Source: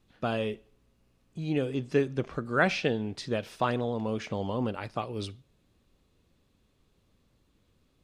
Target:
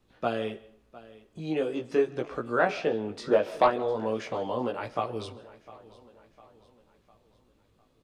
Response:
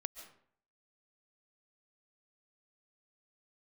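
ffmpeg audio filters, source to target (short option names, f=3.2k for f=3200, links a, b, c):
-filter_complex "[0:a]asettb=1/sr,asplit=3[a][b][c];[a]atrim=end=3.264[d];[b]atrim=start=3.26:end=3.68,asetpts=PTS-STARTPTS,afade=t=in:d=0.004:c=qsin,afade=t=out:st=0.416:d=0.004:c=qsin,equalizer=f=420:w=0.31:g=9[e];[c]atrim=start=3.676[f];[d][e]acrossfade=d=0.004:c1=hsin:c2=qsin[g];[g][f]acrossfade=d=0.004:c1=qsin:c2=hsin,acrossover=split=320|1400[h][i][j];[h]acompressor=threshold=-42dB:ratio=6[k];[i]aeval=exprs='0.398*(cos(1*acos(clip(val(0)/0.398,-1,1)))-cos(1*PI/2))+0.0562*(cos(5*acos(clip(val(0)/0.398,-1,1)))-cos(5*PI/2))':c=same[l];[j]alimiter=level_in=5.5dB:limit=-24dB:level=0:latency=1:release=297,volume=-5.5dB[m];[k][l][m]amix=inputs=3:normalize=0,flanger=delay=16.5:depth=3.3:speed=0.43,aecho=1:1:704|1408|2112|2816:0.106|0.0498|0.0234|0.011,asplit=2[n][o];[1:a]atrim=start_sample=2205[p];[o][p]afir=irnorm=-1:irlink=0,volume=-6.5dB[q];[n][q]amix=inputs=2:normalize=0"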